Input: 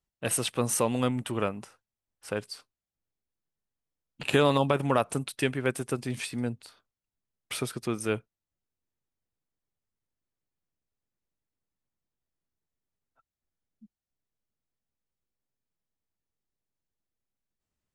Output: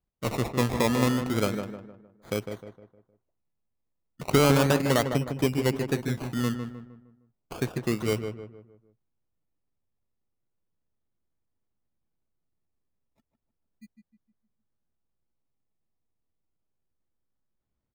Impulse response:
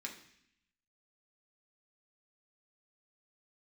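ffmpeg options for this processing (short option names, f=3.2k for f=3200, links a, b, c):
-filter_complex "[0:a]tiltshelf=f=730:g=5,acrusher=samples=23:mix=1:aa=0.000001:lfo=1:lforange=13.8:lforate=0.33,asplit=2[a][b];[b]adelay=154,lowpass=f=1.8k:p=1,volume=-7dB,asplit=2[c][d];[d]adelay=154,lowpass=f=1.8k:p=1,volume=0.42,asplit=2[e][f];[f]adelay=154,lowpass=f=1.8k:p=1,volume=0.42,asplit=2[g][h];[h]adelay=154,lowpass=f=1.8k:p=1,volume=0.42,asplit=2[i][j];[j]adelay=154,lowpass=f=1.8k:p=1,volume=0.42[k];[a][c][e][g][i][k]amix=inputs=6:normalize=0"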